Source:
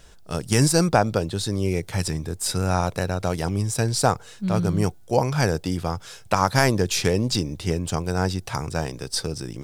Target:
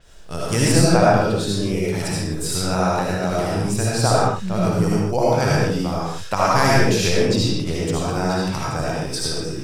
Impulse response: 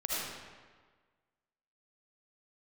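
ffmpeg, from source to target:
-filter_complex "[1:a]atrim=start_sample=2205,afade=t=out:st=0.31:d=0.01,atrim=end_sample=14112[a];[0:a][a]afir=irnorm=-1:irlink=0,adynamicequalizer=threshold=0.0224:dfrequency=6000:dqfactor=0.7:tfrequency=6000:tqfactor=0.7:attack=5:release=100:ratio=0.375:range=2:mode=cutabove:tftype=highshelf,volume=-1dB"

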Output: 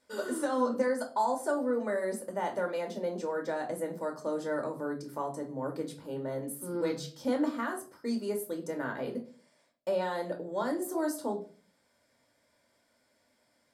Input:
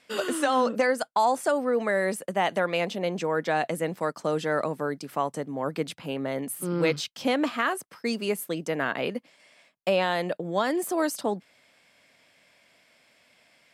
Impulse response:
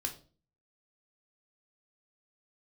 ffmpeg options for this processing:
-filter_complex "[0:a]equalizer=f=2.7k:t=o:w=0.88:g=-15[a];[1:a]atrim=start_sample=2205,asetrate=41454,aresample=44100[b];[a][b]afir=irnorm=-1:irlink=0,volume=-7dB"

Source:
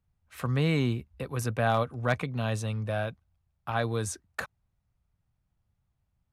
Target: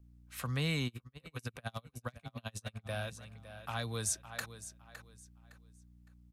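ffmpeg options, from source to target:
-filter_complex "[0:a]highshelf=f=2.3k:g=11.5,aeval=exprs='val(0)+0.00316*(sin(2*PI*60*n/s)+sin(2*PI*2*60*n/s)/2+sin(2*PI*3*60*n/s)/3+sin(2*PI*4*60*n/s)/4+sin(2*PI*5*60*n/s)/5)':c=same,equalizer=f=360:t=o:w=0.59:g=-5,aecho=1:1:561|1122|1683:0.2|0.0559|0.0156,acrossover=split=300|3000[a][b][c];[b]acompressor=threshold=-29dB:ratio=6[d];[a][d][c]amix=inputs=3:normalize=0,asettb=1/sr,asplit=3[e][f][g];[e]atrim=end=0.874[h];[f]atrim=start=0.87:end=2.89,asetpts=PTS-STARTPTS,afade=t=in:d=0.004:c=qsin,afade=t=out:st=2.016:d=0.004:c=qsin,aeval=exprs='val(0)*pow(10,-37*(0.5-0.5*cos(2*PI*10*n/s))/20)':c=same[i];[g]atrim=start=2.886[j];[h][i]acrossfade=d=0.004:c1=hsin:c2=qsin[k];[k][j]acrossfade=d=0.004:c1=qsin:c2=hsin,volume=-7.5dB"

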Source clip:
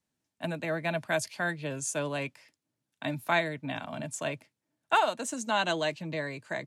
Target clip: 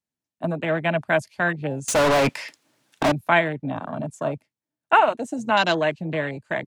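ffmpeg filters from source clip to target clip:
-filter_complex "[0:a]afwtdn=0.0178,asettb=1/sr,asplit=3[a][b][c];[a]atrim=end=1.884[d];[b]atrim=start=1.88:end=3.12,asetpts=PTS-STARTPTS,afade=t=in:d=0.004:c=qsin,afade=t=out:st=1.236:d=0.004:c=qsin,asplit=2[e][f];[f]highpass=f=720:p=1,volume=39dB,asoftclip=type=tanh:threshold=-20.5dB[g];[e][g]amix=inputs=2:normalize=0,lowpass=f=4.8k:p=1,volume=-6dB[h];[c]atrim=start=3.116[i];[d][h]acrossfade=d=0.004:c1=hsin:c2=qsin[j];[j][i]acrossfade=d=0.004:c1=qsin:c2=hsin,volume=8.5dB"

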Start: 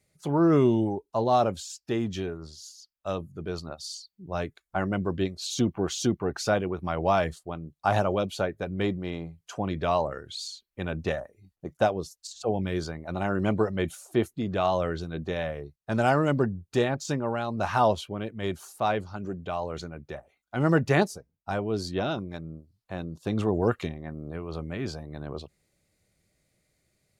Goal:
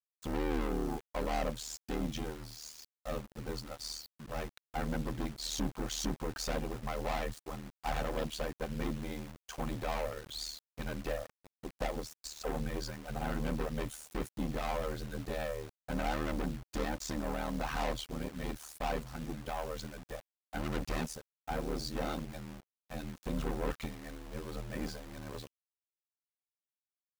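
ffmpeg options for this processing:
-af "lowshelf=f=90:g=5,aeval=exprs='(tanh(35.5*val(0)+0.45)-tanh(0.45))/35.5':c=same,aecho=1:1:3.9:0.55,acrusher=bits=7:mix=0:aa=0.000001,aeval=exprs='val(0)*sin(2*PI*38*n/s)':c=same"

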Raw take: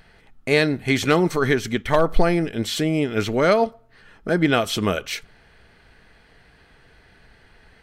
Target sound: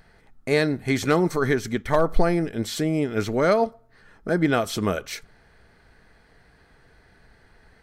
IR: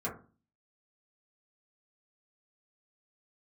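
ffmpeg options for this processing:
-af "equalizer=f=2.9k:t=o:w=0.71:g=-8,volume=-2dB"

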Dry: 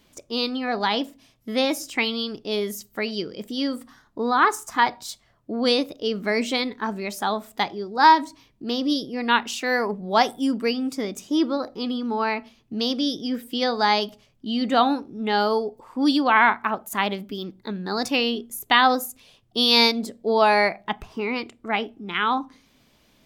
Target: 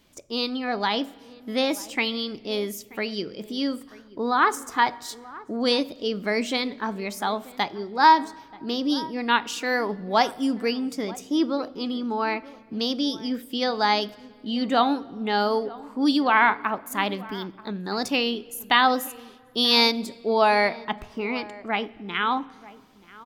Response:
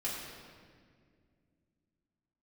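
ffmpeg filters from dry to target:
-filter_complex "[0:a]asplit=2[a][b];[b]adelay=932.9,volume=-19dB,highshelf=f=4k:g=-21[c];[a][c]amix=inputs=2:normalize=0,asplit=2[d][e];[1:a]atrim=start_sample=2205[f];[e][f]afir=irnorm=-1:irlink=0,volume=-22dB[g];[d][g]amix=inputs=2:normalize=0,volume=-2dB"

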